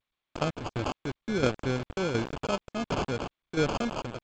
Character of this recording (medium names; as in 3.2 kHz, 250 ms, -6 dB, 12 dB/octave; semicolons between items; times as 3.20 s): a quantiser's noise floor 6-bit, dither none; tremolo saw down 1.4 Hz, depth 60%; aliases and images of a low sample rate 1.9 kHz, jitter 0%; G.722